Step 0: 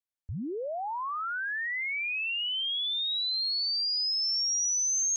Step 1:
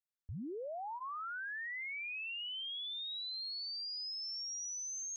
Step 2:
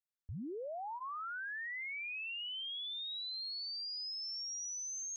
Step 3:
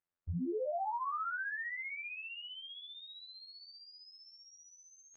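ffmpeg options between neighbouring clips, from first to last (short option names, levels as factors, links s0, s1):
-af "bandreject=f=1000:w=20,alimiter=level_in=2.51:limit=0.0631:level=0:latency=1,volume=0.398,volume=0.447"
-af anull
-af "afftfilt=real='hypot(re,im)*cos(PI*b)':imag='0':win_size=2048:overlap=0.75,lowpass=1600,volume=3.16"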